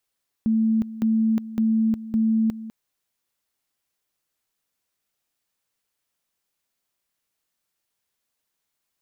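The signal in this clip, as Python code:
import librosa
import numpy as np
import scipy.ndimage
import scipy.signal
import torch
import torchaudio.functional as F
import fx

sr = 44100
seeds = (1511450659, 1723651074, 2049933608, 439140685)

y = fx.two_level_tone(sr, hz=222.0, level_db=-17.0, drop_db=15.0, high_s=0.36, low_s=0.2, rounds=4)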